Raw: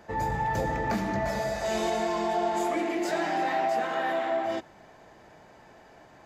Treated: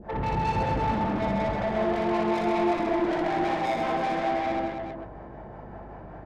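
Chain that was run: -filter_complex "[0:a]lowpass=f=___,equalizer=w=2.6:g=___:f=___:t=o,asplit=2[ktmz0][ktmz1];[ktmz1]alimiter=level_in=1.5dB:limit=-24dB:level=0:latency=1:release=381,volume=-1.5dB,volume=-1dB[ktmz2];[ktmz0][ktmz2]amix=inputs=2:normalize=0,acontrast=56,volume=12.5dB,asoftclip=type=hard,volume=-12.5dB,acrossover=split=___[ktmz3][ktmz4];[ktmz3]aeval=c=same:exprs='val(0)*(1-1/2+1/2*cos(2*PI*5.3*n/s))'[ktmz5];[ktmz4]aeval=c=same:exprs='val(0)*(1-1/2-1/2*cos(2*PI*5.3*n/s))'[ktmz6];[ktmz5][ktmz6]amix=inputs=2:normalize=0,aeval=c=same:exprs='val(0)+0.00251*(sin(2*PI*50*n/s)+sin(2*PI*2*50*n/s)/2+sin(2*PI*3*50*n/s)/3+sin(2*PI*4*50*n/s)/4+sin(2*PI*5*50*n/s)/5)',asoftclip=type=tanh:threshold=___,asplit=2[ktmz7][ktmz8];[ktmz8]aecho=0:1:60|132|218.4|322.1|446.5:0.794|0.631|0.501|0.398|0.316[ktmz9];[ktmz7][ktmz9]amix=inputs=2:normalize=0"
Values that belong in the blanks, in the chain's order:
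1.1k, 3, 120, 470, -27.5dB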